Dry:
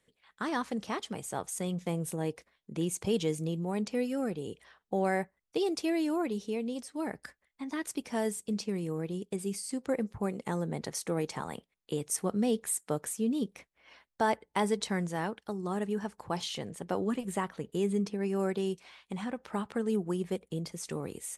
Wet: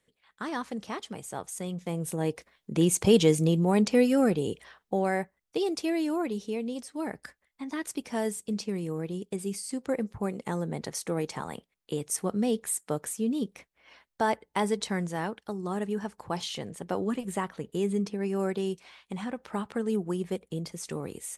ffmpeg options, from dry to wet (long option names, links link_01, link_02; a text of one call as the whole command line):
ffmpeg -i in.wav -af "volume=9.5dB,afade=type=in:start_time=1.84:duration=1.13:silence=0.298538,afade=type=out:start_time=4.36:duration=0.68:silence=0.398107" out.wav